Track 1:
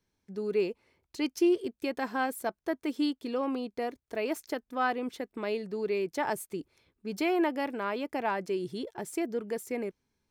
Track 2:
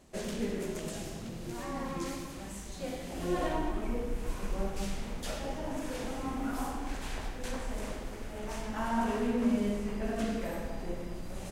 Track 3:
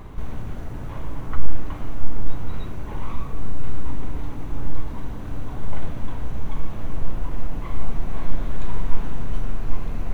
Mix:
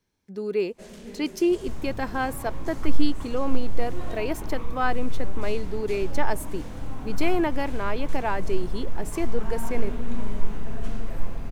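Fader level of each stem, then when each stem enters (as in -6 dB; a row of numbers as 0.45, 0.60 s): +3.0, -7.0, -5.0 dB; 0.00, 0.65, 1.50 s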